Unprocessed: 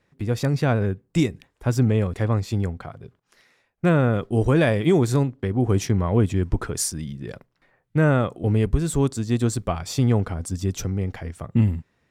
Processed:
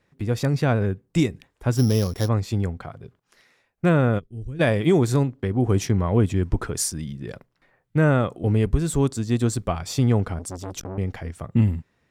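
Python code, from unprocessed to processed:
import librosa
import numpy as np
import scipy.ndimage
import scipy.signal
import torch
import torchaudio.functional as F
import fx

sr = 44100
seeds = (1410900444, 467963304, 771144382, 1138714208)

y = fx.sample_sort(x, sr, block=8, at=(1.76, 2.27), fade=0.02)
y = fx.tone_stack(y, sr, knobs='10-0-1', at=(4.18, 4.59), fade=0.02)
y = fx.transformer_sat(y, sr, knee_hz=1000.0, at=(10.39, 10.98))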